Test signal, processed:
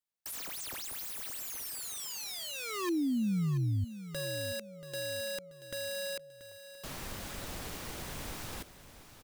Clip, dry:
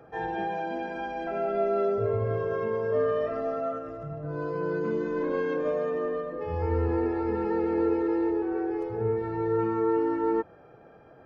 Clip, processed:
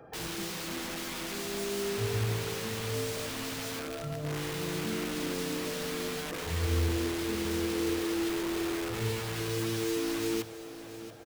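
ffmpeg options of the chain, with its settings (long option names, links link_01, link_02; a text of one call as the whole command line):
ffmpeg -i in.wav -filter_complex "[0:a]acrossover=split=370[link_01][link_02];[link_02]aeval=exprs='(mod(53.1*val(0)+1,2)-1)/53.1':channel_layout=same[link_03];[link_01][link_03]amix=inputs=2:normalize=0,aecho=1:1:683|1366|2049|2732:0.211|0.0888|0.0373|0.0157" out.wav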